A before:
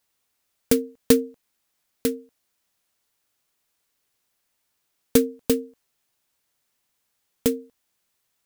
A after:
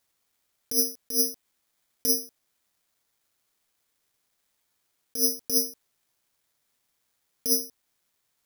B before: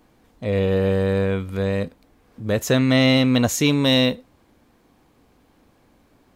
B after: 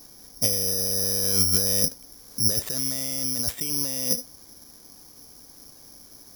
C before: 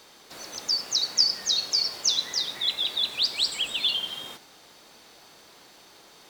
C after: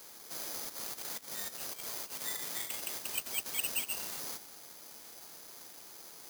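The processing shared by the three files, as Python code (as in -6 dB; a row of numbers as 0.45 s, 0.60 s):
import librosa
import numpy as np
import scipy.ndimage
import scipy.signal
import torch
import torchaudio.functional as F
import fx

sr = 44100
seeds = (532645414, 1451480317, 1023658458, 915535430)

y = fx.over_compress(x, sr, threshold_db=-27.0, ratio=-1.0)
y = (np.kron(scipy.signal.resample_poly(y, 1, 8), np.eye(8)[0]) * 8)[:len(y)]
y = y * 10.0 ** (-6.5 / 20.0)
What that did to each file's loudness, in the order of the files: -1.0 LU, -2.5 LU, -12.5 LU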